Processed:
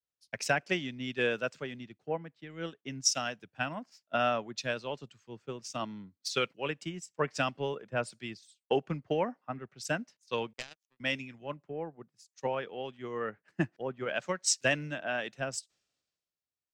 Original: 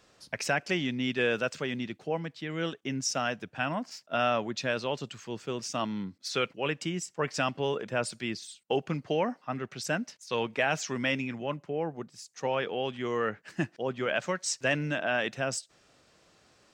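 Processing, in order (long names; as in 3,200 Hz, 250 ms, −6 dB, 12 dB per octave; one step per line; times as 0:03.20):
transient designer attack +4 dB, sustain −4 dB
0:10.53–0:11.00: power curve on the samples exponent 3
multiband upward and downward expander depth 100%
level −5.5 dB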